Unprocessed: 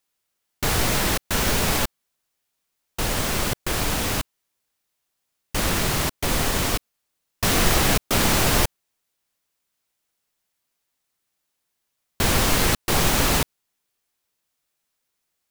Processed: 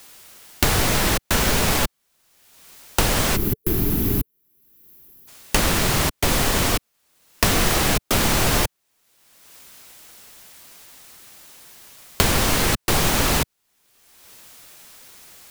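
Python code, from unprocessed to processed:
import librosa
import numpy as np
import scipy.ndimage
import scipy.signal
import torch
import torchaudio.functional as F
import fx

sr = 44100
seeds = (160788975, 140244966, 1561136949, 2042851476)

y = fx.spec_box(x, sr, start_s=3.36, length_s=1.92, low_hz=440.0, high_hz=11000.0, gain_db=-18)
y = fx.band_squash(y, sr, depth_pct=100)
y = F.gain(torch.from_numpy(y), 1.5).numpy()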